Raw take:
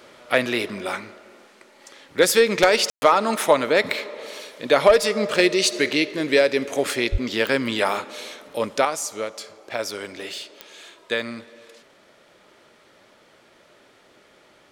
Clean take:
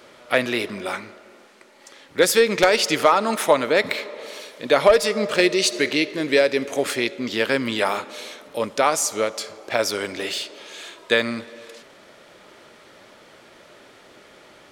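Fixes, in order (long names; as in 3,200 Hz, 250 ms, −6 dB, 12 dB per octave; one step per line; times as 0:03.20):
click removal
0:07.11–0:07.23: high-pass filter 140 Hz 24 dB per octave
ambience match 0:02.90–0:03.02
level 0 dB, from 0:08.85 +6 dB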